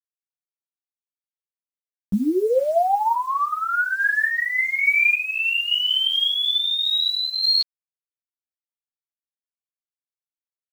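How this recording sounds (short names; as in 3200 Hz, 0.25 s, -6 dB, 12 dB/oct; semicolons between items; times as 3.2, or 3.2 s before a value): a quantiser's noise floor 8-bit, dither none; random-step tremolo; a shimmering, thickened sound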